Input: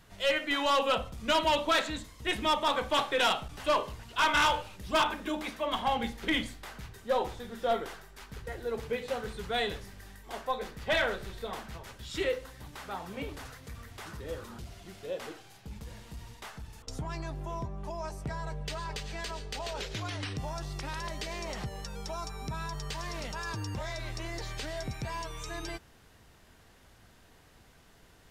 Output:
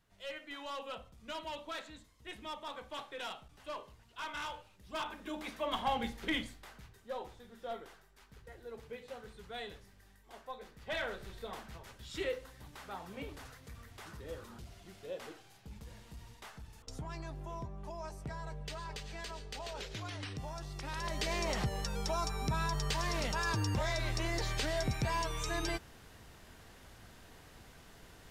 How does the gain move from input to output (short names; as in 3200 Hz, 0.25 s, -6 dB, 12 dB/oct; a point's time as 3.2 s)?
4.77 s -16 dB
5.6 s -4 dB
6.18 s -4 dB
7.15 s -13 dB
10.66 s -13 dB
11.32 s -6 dB
20.75 s -6 dB
21.29 s +3 dB